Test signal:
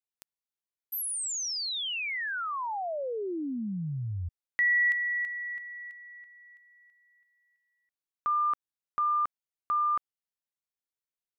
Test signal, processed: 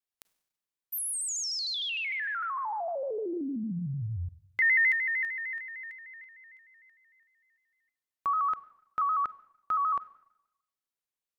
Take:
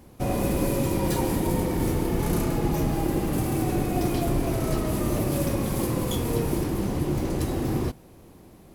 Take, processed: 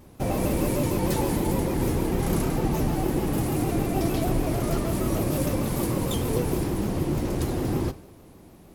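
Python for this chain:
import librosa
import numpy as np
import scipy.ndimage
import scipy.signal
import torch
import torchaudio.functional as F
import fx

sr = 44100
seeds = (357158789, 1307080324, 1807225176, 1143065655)

y = fx.rev_schroeder(x, sr, rt60_s=0.91, comb_ms=32, drr_db=16.0)
y = fx.vibrato_shape(y, sr, shape='square', rate_hz=6.6, depth_cents=100.0)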